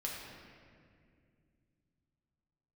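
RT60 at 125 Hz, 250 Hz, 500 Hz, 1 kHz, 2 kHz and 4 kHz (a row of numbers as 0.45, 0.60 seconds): 4.0, 3.5, 2.6, 1.9, 2.0, 1.4 seconds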